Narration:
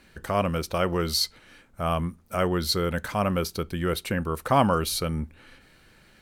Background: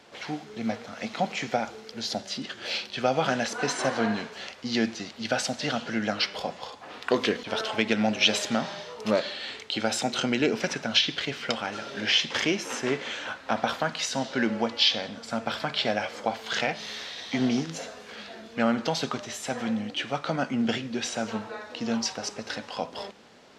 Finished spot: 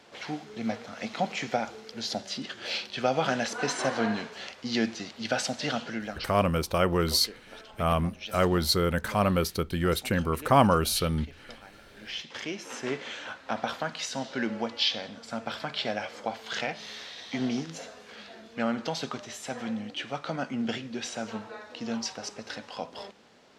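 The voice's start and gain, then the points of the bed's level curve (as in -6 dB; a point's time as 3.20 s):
6.00 s, +0.5 dB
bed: 5.81 s -1.5 dB
6.50 s -19 dB
11.79 s -19 dB
12.88 s -4.5 dB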